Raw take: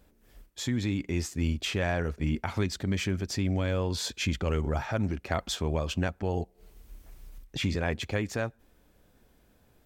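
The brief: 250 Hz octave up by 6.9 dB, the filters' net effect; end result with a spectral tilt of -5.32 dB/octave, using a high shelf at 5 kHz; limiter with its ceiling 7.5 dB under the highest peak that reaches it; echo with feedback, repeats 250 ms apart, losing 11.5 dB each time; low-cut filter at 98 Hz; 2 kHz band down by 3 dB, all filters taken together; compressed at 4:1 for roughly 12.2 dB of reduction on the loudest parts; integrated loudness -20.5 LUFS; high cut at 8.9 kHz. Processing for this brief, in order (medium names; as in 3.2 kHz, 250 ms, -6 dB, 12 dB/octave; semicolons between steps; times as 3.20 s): high-pass 98 Hz; low-pass 8.9 kHz; peaking EQ 250 Hz +9 dB; peaking EQ 2 kHz -3 dB; treble shelf 5 kHz -6.5 dB; compression 4:1, threshold -35 dBFS; peak limiter -29 dBFS; feedback delay 250 ms, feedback 27%, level -11.5 dB; trim +19.5 dB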